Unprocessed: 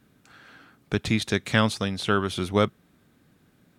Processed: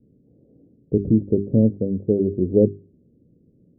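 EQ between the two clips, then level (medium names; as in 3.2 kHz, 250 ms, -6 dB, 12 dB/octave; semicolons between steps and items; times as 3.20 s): dynamic bell 320 Hz, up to +4 dB, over -37 dBFS, Q 0.86; steep low-pass 520 Hz 48 dB/octave; hum notches 50/100/150/200/250/300/350/400 Hz; +5.5 dB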